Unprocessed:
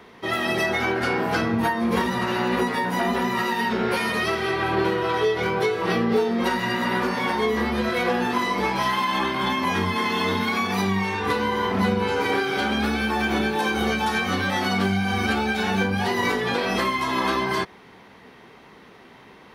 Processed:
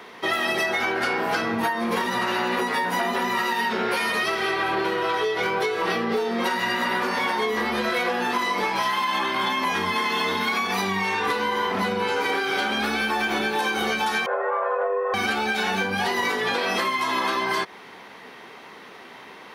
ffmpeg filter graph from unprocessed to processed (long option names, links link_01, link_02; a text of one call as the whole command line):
ffmpeg -i in.wav -filter_complex "[0:a]asettb=1/sr,asplit=3[link_01][link_02][link_03];[link_01]atrim=end=14.264[link_04];[link_02]atrim=start=14.26:end=15.14,asetpts=PTS-STARTPTS,afade=type=in:duration=0.004:curve=qsin,afade=type=out:start_time=0.876:duration=0.004:curve=qsin,lowpass=frequency=1100:width=0.5412,lowpass=frequency=1100:width=1.3066,afreqshift=300[link_05];[link_03]atrim=start=15.136[link_06];[link_04][link_05]acrossfade=duration=0.004:curve1=hsin:curve2=qsin[link_07];[link_07][link_06]acrossfade=duration=0.004:curve1=qsin:curve2=hsin,acontrast=82,highpass=frequency=520:poles=1,acompressor=threshold=-21dB:ratio=6" out.wav